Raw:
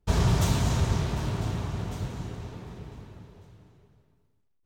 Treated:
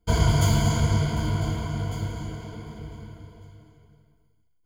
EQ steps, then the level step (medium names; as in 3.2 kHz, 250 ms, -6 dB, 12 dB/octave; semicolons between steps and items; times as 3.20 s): rippled EQ curve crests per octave 1.8, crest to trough 17 dB; 0.0 dB